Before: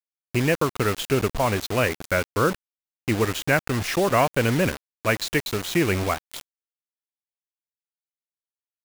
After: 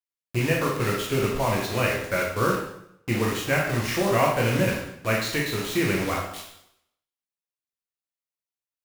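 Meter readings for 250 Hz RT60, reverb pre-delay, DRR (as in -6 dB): 0.80 s, 6 ms, -3.5 dB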